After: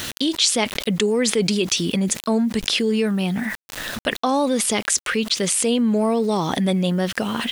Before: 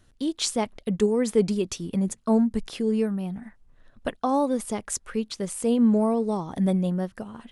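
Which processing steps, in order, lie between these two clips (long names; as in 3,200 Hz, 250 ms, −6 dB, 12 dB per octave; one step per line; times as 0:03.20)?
meter weighting curve D
bit-depth reduction 10 bits, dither none
envelope flattener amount 70%
level −2 dB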